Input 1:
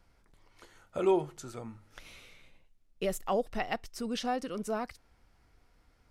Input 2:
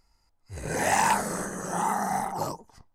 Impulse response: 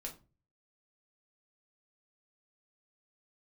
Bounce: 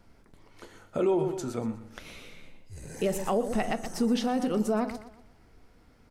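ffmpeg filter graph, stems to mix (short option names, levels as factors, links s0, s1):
-filter_complex "[0:a]equalizer=f=250:t=o:w=2.5:g=7.5,volume=1.26,asplit=3[s0][s1][s2];[s1]volume=0.631[s3];[s2]volume=0.251[s4];[1:a]acompressor=threshold=0.0126:ratio=2.5,equalizer=f=1000:t=o:w=2.4:g=-10.5,adelay=2200,volume=0.75[s5];[2:a]atrim=start_sample=2205[s6];[s3][s6]afir=irnorm=-1:irlink=0[s7];[s4]aecho=0:1:121|242|363|484|605:1|0.37|0.137|0.0507|0.0187[s8];[s0][s5][s7][s8]amix=inputs=4:normalize=0,alimiter=limit=0.126:level=0:latency=1:release=128"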